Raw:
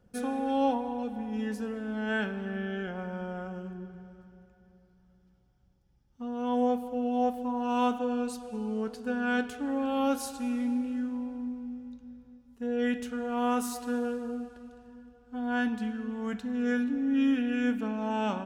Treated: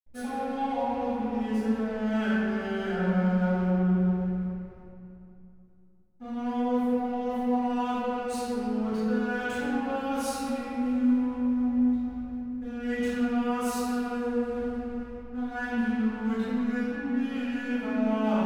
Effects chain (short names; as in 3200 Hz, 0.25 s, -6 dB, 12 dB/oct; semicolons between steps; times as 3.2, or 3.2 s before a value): dynamic EQ 320 Hz, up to -5 dB, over -40 dBFS, Q 1.6; reverse; compressor, threshold -40 dBFS, peak gain reduction 15.5 dB; reverse; backlash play -50 dBFS; reverb RT60 2.7 s, pre-delay 3 ms, DRR -18.5 dB; gain -8 dB